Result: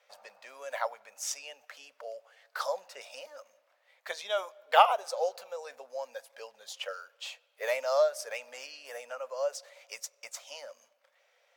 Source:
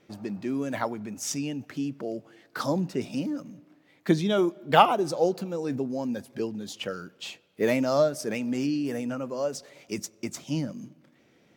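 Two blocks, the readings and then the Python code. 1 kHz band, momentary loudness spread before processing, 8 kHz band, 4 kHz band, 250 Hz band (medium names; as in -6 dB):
-2.5 dB, 14 LU, -3.0 dB, -3.0 dB, under -40 dB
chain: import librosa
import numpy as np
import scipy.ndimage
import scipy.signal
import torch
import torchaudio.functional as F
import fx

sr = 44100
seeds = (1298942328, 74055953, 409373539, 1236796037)

y = scipy.signal.sosfilt(scipy.signal.ellip(4, 1.0, 40, 530.0, 'highpass', fs=sr, output='sos'), x)
y = y * 10.0 ** (-2.0 / 20.0)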